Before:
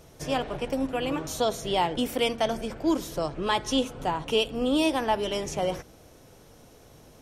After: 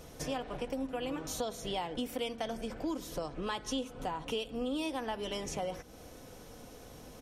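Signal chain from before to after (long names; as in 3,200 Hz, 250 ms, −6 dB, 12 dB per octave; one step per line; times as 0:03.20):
comb filter 4 ms, depth 30%
downward compressor 3 to 1, threshold −39 dBFS, peak gain reduction 15 dB
level +1.5 dB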